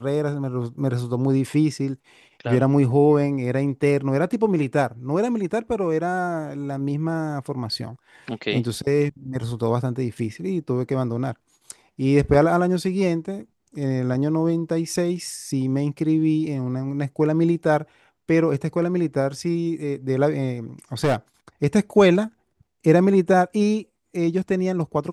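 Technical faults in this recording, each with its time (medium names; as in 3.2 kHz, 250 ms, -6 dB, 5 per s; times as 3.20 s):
10.18 s: dropout 3.5 ms
21.04–21.16 s: clipped -15.5 dBFS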